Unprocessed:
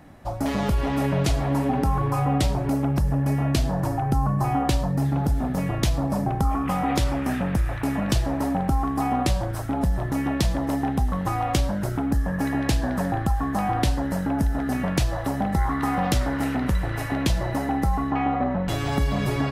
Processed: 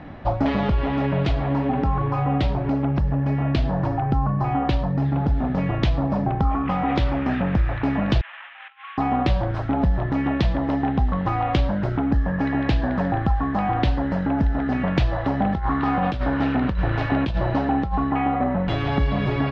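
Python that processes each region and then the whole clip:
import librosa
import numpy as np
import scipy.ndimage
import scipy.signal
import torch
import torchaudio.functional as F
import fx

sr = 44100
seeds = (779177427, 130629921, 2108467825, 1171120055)

y = fx.chain(x, sr, fx.cvsd(bps=16000),
    fx.over_compress(threshold_db=-26.0, ratio=-0.5),
    fx.highpass(hz=1400.0, slope=24), at=(8.21, 8.98))
y = fx.chain(y, sr, fx.over_compress(threshold_db=-23.0, ratio=-0.5),
    fx.notch(hz=2000.0, q=11.0),
    fx.resample_bad(factor=3, down='none', up='hold'), at=(15.45, 18.11))
y = scipy.signal.sosfilt(scipy.signal.butter(4, 3700.0, 'lowpass', fs=sr, output='sos'), y)
y = fx.rider(y, sr, range_db=10, speed_s=0.5)
y = y * librosa.db_to_amplitude(2.0)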